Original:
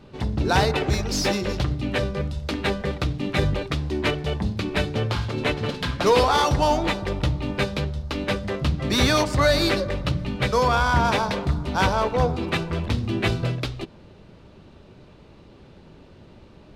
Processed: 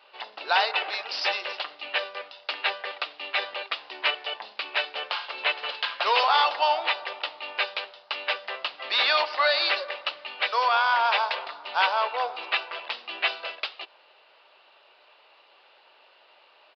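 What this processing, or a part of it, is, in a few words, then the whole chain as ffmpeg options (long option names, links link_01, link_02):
musical greeting card: -af "aresample=11025,aresample=44100,highpass=frequency=680:width=0.5412,highpass=frequency=680:width=1.3066,equalizer=frequency=2800:width_type=o:width=0.28:gain=7"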